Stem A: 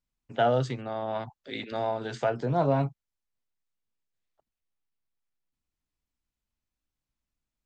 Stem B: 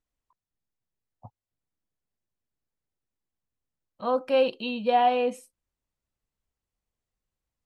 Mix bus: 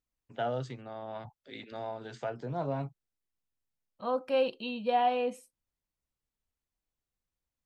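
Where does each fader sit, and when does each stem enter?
−9.0, −5.5 decibels; 0.00, 0.00 seconds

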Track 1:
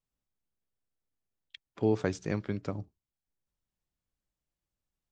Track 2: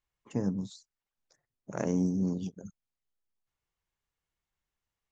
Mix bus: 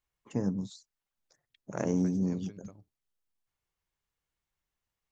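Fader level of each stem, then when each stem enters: −18.0, 0.0 decibels; 0.00, 0.00 seconds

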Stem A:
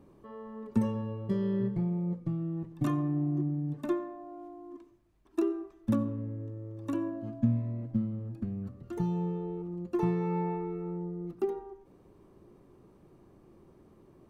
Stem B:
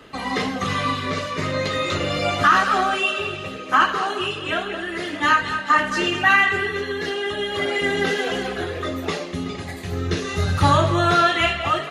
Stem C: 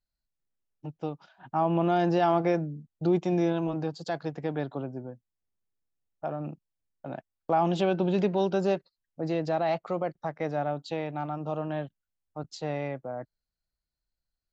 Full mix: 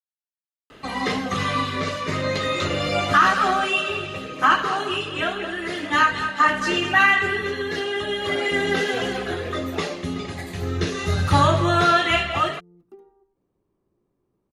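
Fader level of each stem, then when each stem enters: −15.5 dB, −0.5 dB, muted; 1.50 s, 0.70 s, muted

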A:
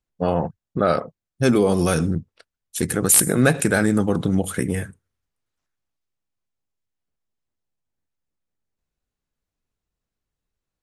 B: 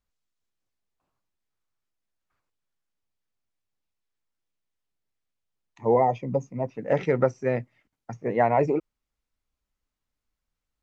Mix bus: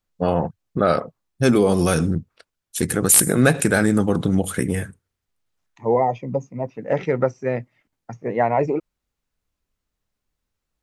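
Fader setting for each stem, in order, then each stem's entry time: +1.0, +2.0 decibels; 0.00, 0.00 seconds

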